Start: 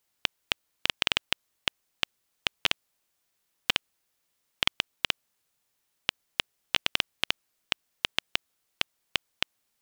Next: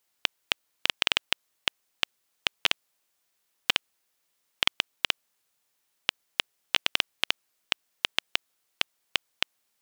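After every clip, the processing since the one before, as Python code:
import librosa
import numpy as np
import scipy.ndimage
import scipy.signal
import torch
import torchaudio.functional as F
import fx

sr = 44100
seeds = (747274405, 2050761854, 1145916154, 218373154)

y = fx.low_shelf(x, sr, hz=200.0, db=-8.5)
y = y * librosa.db_to_amplitude(1.5)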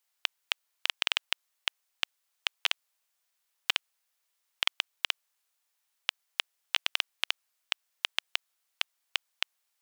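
y = scipy.signal.sosfilt(scipy.signal.butter(2, 670.0, 'highpass', fs=sr, output='sos'), x)
y = y * librosa.db_to_amplitude(-3.5)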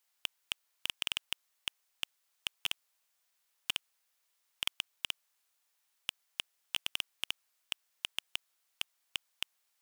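y = np.clip(x, -10.0 ** (-19.5 / 20.0), 10.0 ** (-19.5 / 20.0))
y = y * librosa.db_to_amplitude(1.0)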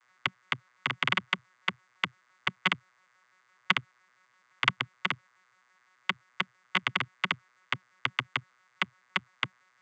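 y = fx.vocoder_arp(x, sr, chord='bare fifth', root=47, every_ms=85)
y = fx.band_shelf(y, sr, hz=1500.0, db=12.5, octaves=1.3)
y = y * librosa.db_to_amplitude(5.0)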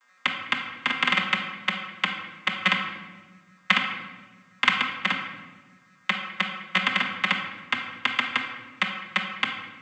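y = x + 0.87 * np.pad(x, (int(3.8 * sr / 1000.0), 0))[:len(x)]
y = fx.room_shoebox(y, sr, seeds[0], volume_m3=900.0, walls='mixed', distance_m=1.3)
y = y * librosa.db_to_amplitude(2.0)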